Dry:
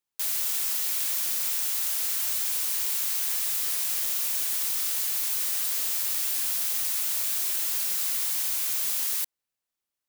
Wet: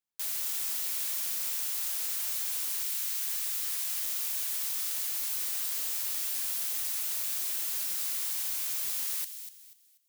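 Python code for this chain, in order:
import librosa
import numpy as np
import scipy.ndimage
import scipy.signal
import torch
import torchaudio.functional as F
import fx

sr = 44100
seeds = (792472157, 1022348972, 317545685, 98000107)

y = fx.highpass(x, sr, hz=fx.line((2.83, 1300.0), (5.03, 350.0)), slope=12, at=(2.83, 5.03), fade=0.02)
y = fx.echo_wet_highpass(y, sr, ms=243, feedback_pct=30, hz=2400.0, wet_db=-9.5)
y = y * librosa.db_to_amplitude(-5.5)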